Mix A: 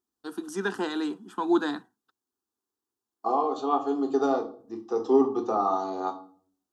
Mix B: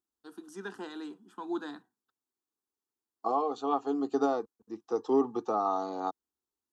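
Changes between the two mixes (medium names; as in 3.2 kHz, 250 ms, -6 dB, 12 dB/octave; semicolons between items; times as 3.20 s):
first voice -11.5 dB; reverb: off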